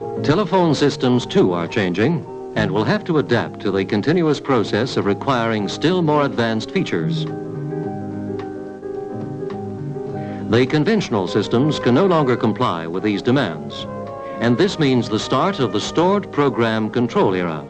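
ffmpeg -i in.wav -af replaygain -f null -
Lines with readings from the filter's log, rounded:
track_gain = -0.5 dB
track_peak = 0.533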